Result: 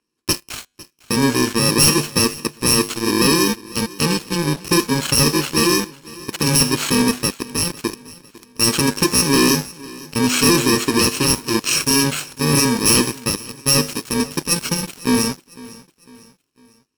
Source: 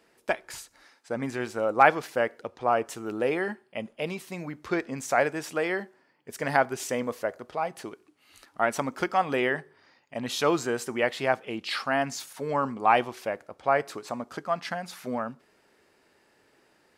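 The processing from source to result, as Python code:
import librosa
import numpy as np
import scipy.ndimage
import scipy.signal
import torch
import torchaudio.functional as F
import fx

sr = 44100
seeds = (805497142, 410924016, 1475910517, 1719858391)

y = fx.bit_reversed(x, sr, seeds[0], block=64)
y = scipy.signal.sosfilt(scipy.signal.butter(2, 7300.0, 'lowpass', fs=sr, output='sos'), y)
y = fx.peak_eq(y, sr, hz=300.0, db=2.5, octaves=0.34)
y = fx.comb_fb(y, sr, f0_hz=50.0, decay_s=0.62, harmonics='odd', damping=0.0, mix_pct=60)
y = fx.leveller(y, sr, passes=5)
y = fx.echo_feedback(y, sr, ms=502, feedback_pct=44, wet_db=-20.5)
y = F.gain(torch.from_numpy(y), 6.5).numpy()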